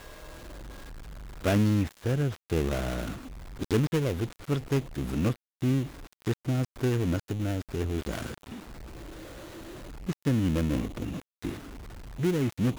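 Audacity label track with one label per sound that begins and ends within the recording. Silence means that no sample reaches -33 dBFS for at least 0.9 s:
1.440000	8.520000	sound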